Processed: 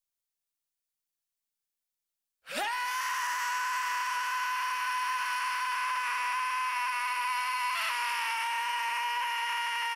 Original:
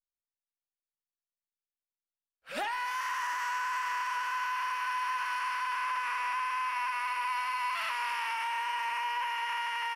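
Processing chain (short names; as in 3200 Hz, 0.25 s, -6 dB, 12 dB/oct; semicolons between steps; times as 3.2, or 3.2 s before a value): high shelf 3300 Hz +9 dB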